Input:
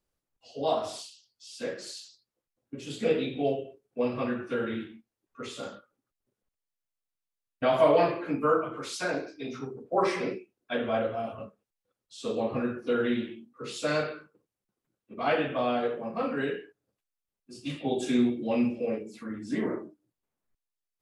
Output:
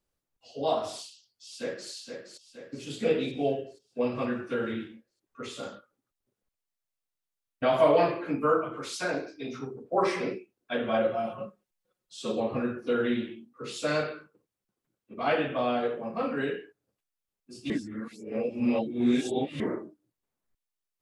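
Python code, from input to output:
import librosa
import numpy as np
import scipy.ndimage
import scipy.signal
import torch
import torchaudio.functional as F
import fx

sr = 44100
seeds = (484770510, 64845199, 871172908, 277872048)

y = fx.echo_throw(x, sr, start_s=1.05, length_s=0.85, ms=470, feedback_pct=55, wet_db=-7.0)
y = fx.comb(y, sr, ms=5.5, depth=0.78, at=(10.88, 12.4))
y = fx.edit(y, sr, fx.reverse_span(start_s=17.7, length_s=1.9), tone=tone)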